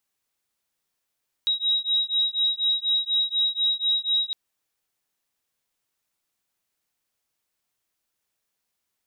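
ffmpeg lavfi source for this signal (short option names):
-f lavfi -i "aevalsrc='0.0631*(sin(2*PI*3820*t)+sin(2*PI*3824.1*t))':d=2.86:s=44100"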